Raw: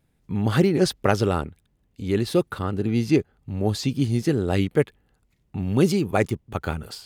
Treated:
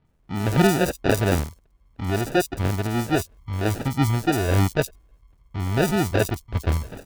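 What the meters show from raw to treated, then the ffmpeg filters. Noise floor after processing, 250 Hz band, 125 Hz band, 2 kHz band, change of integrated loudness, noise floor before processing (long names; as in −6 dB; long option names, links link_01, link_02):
−61 dBFS, −1.5 dB, +2.0 dB, +4.0 dB, 0.0 dB, −68 dBFS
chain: -filter_complex "[0:a]asubboost=boost=5:cutoff=74,aphaser=in_gain=1:out_gain=1:delay=3.4:decay=0.37:speed=1.5:type=triangular,acrusher=samples=41:mix=1:aa=0.000001,acrossover=split=4500[link_01][link_02];[link_02]adelay=50[link_03];[link_01][link_03]amix=inputs=2:normalize=0"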